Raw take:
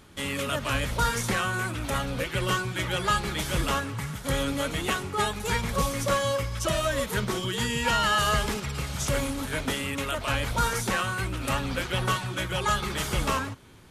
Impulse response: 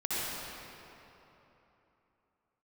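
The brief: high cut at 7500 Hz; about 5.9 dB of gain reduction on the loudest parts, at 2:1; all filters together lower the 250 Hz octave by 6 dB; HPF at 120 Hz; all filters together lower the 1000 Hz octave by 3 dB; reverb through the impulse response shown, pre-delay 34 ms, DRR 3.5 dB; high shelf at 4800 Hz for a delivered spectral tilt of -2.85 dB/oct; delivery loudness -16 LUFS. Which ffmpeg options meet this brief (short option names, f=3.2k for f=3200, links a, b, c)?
-filter_complex "[0:a]highpass=120,lowpass=7.5k,equalizer=f=250:t=o:g=-7.5,equalizer=f=1k:t=o:g=-4,highshelf=f=4.8k:g=5.5,acompressor=threshold=-33dB:ratio=2,asplit=2[a][b];[1:a]atrim=start_sample=2205,adelay=34[c];[b][c]afir=irnorm=-1:irlink=0,volume=-11.5dB[d];[a][d]amix=inputs=2:normalize=0,volume=15.5dB"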